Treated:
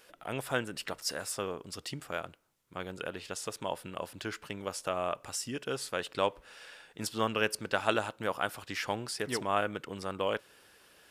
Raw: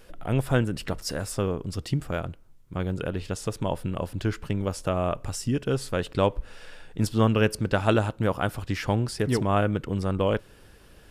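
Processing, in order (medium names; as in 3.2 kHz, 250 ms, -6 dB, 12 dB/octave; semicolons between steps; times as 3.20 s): high-pass 920 Hz 6 dB/octave; trim -1 dB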